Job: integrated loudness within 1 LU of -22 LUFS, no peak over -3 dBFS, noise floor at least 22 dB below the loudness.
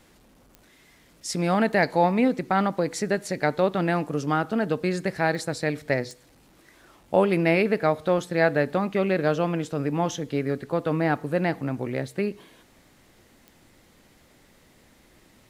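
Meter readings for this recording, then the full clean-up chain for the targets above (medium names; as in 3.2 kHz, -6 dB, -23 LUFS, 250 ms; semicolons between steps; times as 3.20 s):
clicks found 4; loudness -25.0 LUFS; peak level -6.5 dBFS; loudness target -22.0 LUFS
-> de-click; trim +3 dB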